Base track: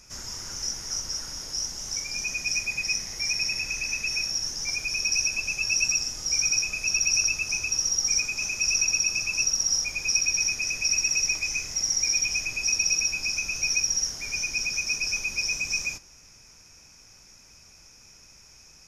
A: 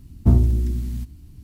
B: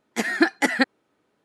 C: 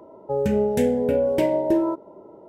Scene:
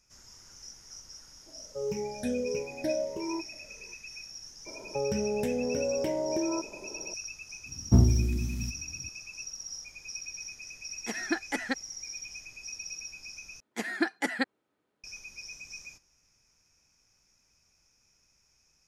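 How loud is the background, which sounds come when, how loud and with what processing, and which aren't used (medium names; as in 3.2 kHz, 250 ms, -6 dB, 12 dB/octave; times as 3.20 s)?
base track -16.5 dB
1.46 s: add C -16.5 dB + drifting ripple filter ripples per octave 0.77, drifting -1.5 Hz, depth 21 dB
4.66 s: add C -1 dB + compression 4:1, threshold -27 dBFS
7.66 s: add A -3 dB + high-pass 72 Hz
10.90 s: add B -11.5 dB
13.60 s: replace with B -9.5 dB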